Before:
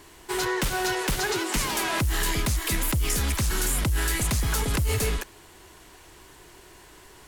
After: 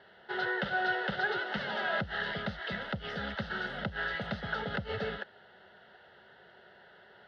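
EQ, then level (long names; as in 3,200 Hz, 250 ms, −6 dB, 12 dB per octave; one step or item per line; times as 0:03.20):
loudspeaker in its box 200–3,200 Hz, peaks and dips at 200 Hz +8 dB, 350 Hz +6 dB, 560 Hz +4 dB, 1,400 Hz +5 dB
phaser with its sweep stopped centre 1,600 Hz, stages 8
−2.5 dB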